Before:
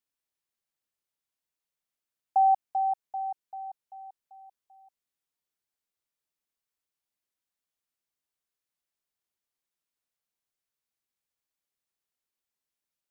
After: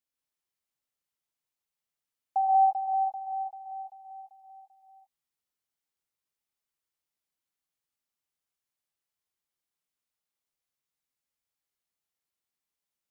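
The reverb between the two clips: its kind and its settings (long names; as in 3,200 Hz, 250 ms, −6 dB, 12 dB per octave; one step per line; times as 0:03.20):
reverb whose tail is shaped and stops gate 190 ms rising, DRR 0.5 dB
level −3.5 dB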